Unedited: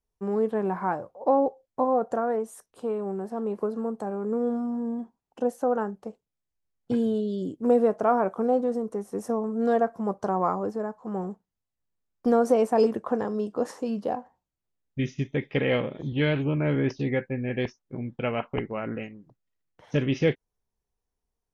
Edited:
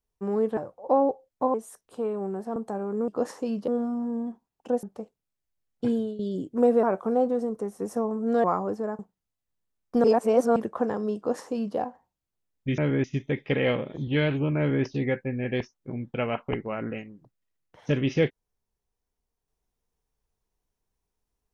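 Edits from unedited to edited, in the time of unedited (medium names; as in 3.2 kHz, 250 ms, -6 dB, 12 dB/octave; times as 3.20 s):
0.57–0.94 s: delete
1.91–2.39 s: delete
3.41–3.88 s: delete
5.55–5.90 s: delete
6.98–7.26 s: fade out, to -13.5 dB
7.90–8.16 s: delete
9.77–10.40 s: delete
10.95–11.30 s: delete
12.35–12.87 s: reverse
13.48–14.08 s: copy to 4.40 s
16.63–16.89 s: copy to 15.09 s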